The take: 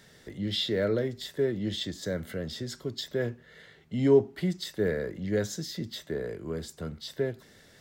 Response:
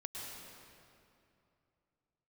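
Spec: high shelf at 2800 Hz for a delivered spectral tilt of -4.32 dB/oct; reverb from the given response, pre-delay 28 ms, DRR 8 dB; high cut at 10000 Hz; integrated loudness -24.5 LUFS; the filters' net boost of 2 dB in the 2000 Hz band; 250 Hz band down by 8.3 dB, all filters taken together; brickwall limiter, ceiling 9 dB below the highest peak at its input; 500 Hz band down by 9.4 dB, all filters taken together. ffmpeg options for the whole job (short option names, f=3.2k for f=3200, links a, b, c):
-filter_complex "[0:a]lowpass=10k,equalizer=f=250:t=o:g=-9,equalizer=f=500:t=o:g=-8.5,equalizer=f=2k:t=o:g=6,highshelf=f=2.8k:g=-8.5,alimiter=level_in=4dB:limit=-24dB:level=0:latency=1,volume=-4dB,asplit=2[a][b];[1:a]atrim=start_sample=2205,adelay=28[c];[b][c]afir=irnorm=-1:irlink=0,volume=-7.5dB[d];[a][d]amix=inputs=2:normalize=0,volume=14.5dB"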